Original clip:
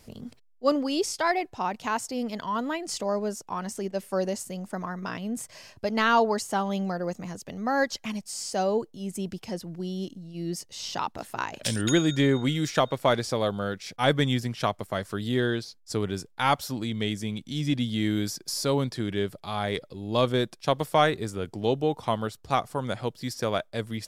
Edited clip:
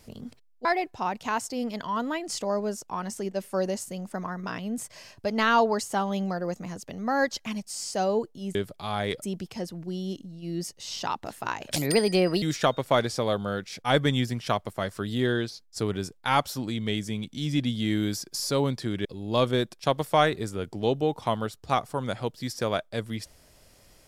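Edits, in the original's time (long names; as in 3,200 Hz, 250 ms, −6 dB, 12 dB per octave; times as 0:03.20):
0:00.65–0:01.24: remove
0:11.68–0:12.56: play speed 133%
0:19.19–0:19.86: move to 0:09.14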